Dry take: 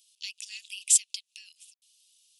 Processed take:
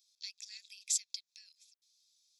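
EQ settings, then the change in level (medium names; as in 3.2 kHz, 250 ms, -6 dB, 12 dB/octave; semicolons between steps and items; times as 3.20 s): static phaser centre 2.9 kHz, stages 6; -4.0 dB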